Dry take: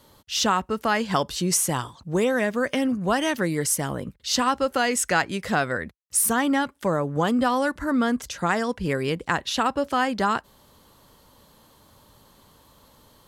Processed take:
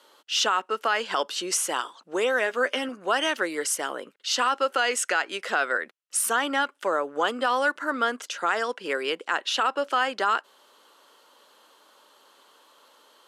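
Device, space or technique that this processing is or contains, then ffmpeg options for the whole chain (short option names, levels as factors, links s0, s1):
laptop speaker: -filter_complex "[0:a]highpass=f=350:w=0.5412,highpass=f=350:w=1.3066,equalizer=f=1400:t=o:w=0.46:g=7,equalizer=f=2900:t=o:w=0.45:g=6.5,alimiter=limit=0.282:level=0:latency=1:release=36,lowpass=10000,asettb=1/sr,asplit=3[s0][s1][s2];[s0]atrim=end=2.454[s3];[s1]atrim=start=2.45:end=2.89,asetpts=PTS-STARTPTS,afade=t=in:d=0.004:c=qsin,afade=t=out:st=0.436:d=0.004:c=qsin,asplit=2[s4][s5];[s5]adelay=12,volume=0.398[s6];[s4][s6]amix=inputs=2:normalize=0,atrim=end_sample=19404[s7];[s2]atrim=start=2.886[s8];[s3][s7]acrossfade=d=0.004:c1=hsin:c2=qsin[s9];[s9][s8]acrossfade=d=0.004:c1=qsin:c2=hsin,volume=0.841"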